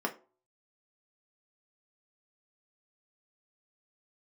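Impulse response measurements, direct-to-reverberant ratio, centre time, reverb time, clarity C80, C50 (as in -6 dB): 1.5 dB, 8 ms, 0.40 s, 21.0 dB, 15.5 dB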